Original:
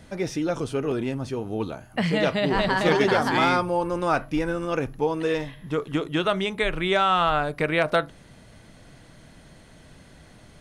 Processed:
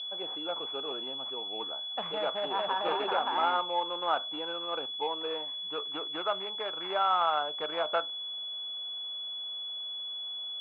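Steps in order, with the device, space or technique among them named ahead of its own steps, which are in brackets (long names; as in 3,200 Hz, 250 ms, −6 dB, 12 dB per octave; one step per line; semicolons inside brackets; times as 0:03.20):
toy sound module (linearly interpolated sample-rate reduction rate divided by 8×; switching amplifier with a slow clock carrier 3,400 Hz; loudspeaker in its box 680–4,700 Hz, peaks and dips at 840 Hz +4 dB, 1,300 Hz +3 dB, 1,900 Hz −7 dB, 2,800 Hz +6 dB)
level −4 dB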